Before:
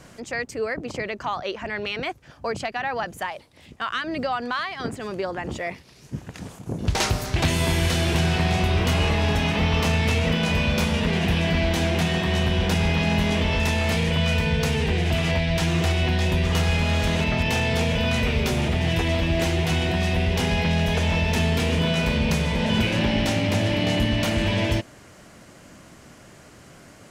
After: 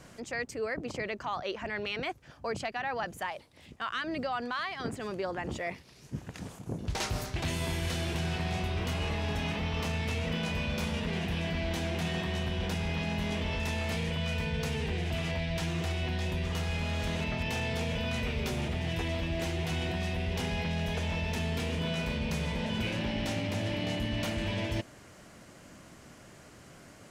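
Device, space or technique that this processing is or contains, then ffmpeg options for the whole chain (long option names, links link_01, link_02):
compression on the reversed sound: -af "areverse,acompressor=threshold=-24dB:ratio=6,areverse,volume=-5dB"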